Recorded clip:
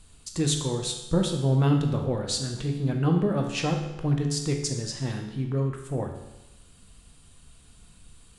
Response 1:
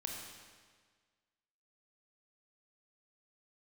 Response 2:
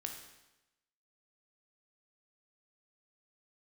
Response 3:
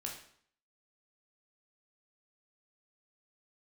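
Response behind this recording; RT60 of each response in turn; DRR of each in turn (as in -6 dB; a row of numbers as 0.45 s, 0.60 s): 2; 1.6 s, 0.95 s, 0.60 s; 0.0 dB, 2.5 dB, -1.0 dB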